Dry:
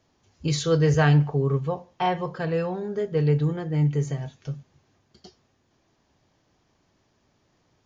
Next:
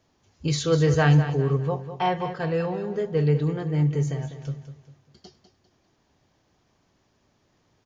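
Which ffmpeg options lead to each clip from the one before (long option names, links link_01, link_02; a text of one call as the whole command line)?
ffmpeg -i in.wav -af "aecho=1:1:200|400|600|800:0.282|0.104|0.0386|0.0143" out.wav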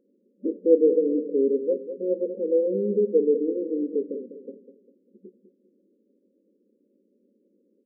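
ffmpeg -i in.wav -af "afftfilt=real='re*between(b*sr/4096,190,580)':imag='im*between(b*sr/4096,190,580)':win_size=4096:overlap=0.75,volume=5.5dB" out.wav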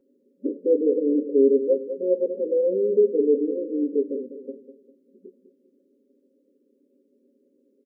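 ffmpeg -i in.wav -af "aecho=1:1:7.4:0.81" out.wav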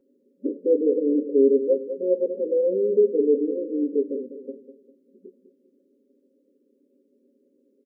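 ffmpeg -i in.wav -af anull out.wav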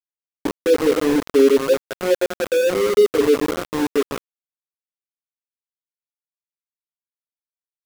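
ffmpeg -i in.wav -af "aeval=exprs='val(0)*gte(abs(val(0)),0.0668)':channel_layout=same,volume=4dB" out.wav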